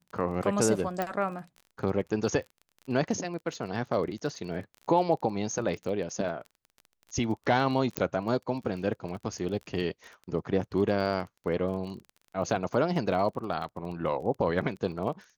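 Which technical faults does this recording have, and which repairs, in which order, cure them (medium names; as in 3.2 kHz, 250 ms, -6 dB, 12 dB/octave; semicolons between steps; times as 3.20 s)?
crackle 24 per s -38 dBFS
1.02 s: pop -16 dBFS
7.97 s: pop -9 dBFS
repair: de-click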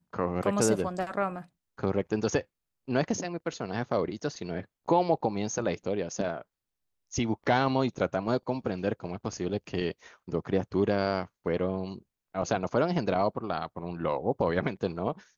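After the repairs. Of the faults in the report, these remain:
1.02 s: pop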